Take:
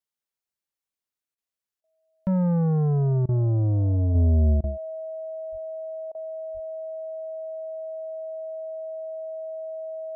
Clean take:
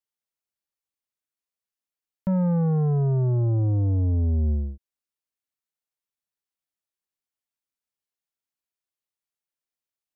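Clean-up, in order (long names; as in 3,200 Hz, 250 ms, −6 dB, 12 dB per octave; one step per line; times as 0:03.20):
notch filter 640 Hz, Q 30
0:05.51–0:05.63: high-pass filter 140 Hz 24 dB per octave
0:06.53–0:06.65: high-pass filter 140 Hz 24 dB per octave
repair the gap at 0:01.35/0:01.81/0:03.26/0:04.61/0:06.12, 27 ms
level 0 dB, from 0:04.15 −3.5 dB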